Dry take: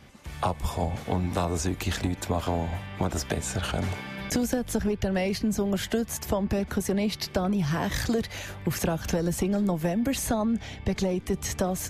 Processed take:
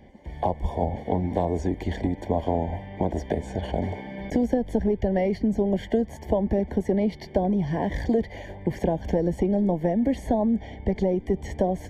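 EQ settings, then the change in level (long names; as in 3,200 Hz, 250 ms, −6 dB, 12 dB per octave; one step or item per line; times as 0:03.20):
Savitzky-Golay smoothing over 41 samples
Butterworth band-reject 1,300 Hz, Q 1.2
parametric band 120 Hz −9.5 dB 0.92 octaves
+5.0 dB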